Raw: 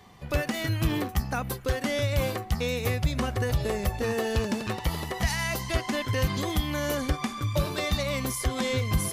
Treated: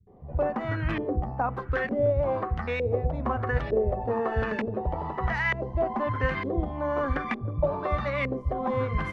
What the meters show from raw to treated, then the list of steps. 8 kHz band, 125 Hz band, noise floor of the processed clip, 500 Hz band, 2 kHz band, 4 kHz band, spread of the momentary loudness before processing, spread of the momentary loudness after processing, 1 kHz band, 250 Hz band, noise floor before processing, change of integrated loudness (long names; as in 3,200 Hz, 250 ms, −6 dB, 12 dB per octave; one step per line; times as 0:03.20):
below −25 dB, −2.0 dB, −39 dBFS, +3.5 dB, +0.5 dB, −13.5 dB, 3 LU, 4 LU, +4.0 dB, −1.5 dB, −41 dBFS, 0.0 dB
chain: auto-filter low-pass saw up 1.1 Hz 430–2,100 Hz
mains-hum notches 50/100/150/200/250/300/350/400/450/500 Hz
multiband delay without the direct sound lows, highs 70 ms, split 170 Hz